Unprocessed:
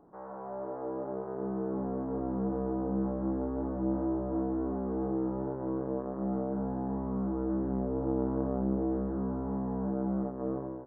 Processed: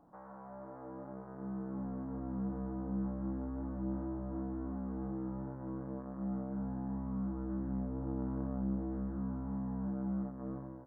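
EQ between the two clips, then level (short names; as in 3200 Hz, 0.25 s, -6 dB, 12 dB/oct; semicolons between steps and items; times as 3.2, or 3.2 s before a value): bell 400 Hz -14 dB 0.37 oct; dynamic EQ 670 Hz, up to -8 dB, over -51 dBFS, Q 0.81; -2.0 dB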